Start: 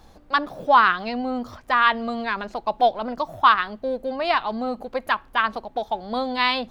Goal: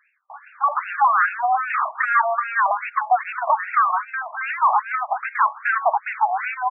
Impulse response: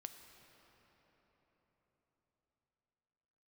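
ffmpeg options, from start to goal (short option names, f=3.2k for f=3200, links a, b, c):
-filter_complex "[0:a]tremolo=f=4.1:d=0.67,aeval=exprs='clip(val(0),-1,0.0596)':c=same,aresample=32000,aresample=44100,acompressor=threshold=-31dB:ratio=5,highpass=110,acrossover=split=150|2600[a][b][c];[a]adelay=50[d];[b]adelay=300[e];[d][e][c]amix=inputs=3:normalize=0,dynaudnorm=f=130:g=11:m=12dB,asplit=2[f][g];[g]highpass=f=720:p=1,volume=26dB,asoftclip=type=tanh:threshold=-10dB[h];[f][h]amix=inputs=2:normalize=0,lowpass=f=1.7k:p=1,volume=-6dB,highshelf=f=4.5k:g=12,afftfilt=real='re*between(b*sr/1024,840*pow(2000/840,0.5+0.5*sin(2*PI*2.5*pts/sr))/1.41,840*pow(2000/840,0.5+0.5*sin(2*PI*2.5*pts/sr))*1.41)':imag='im*between(b*sr/1024,840*pow(2000/840,0.5+0.5*sin(2*PI*2.5*pts/sr))/1.41,840*pow(2000/840,0.5+0.5*sin(2*PI*2.5*pts/sr))*1.41)':win_size=1024:overlap=0.75,volume=3dB"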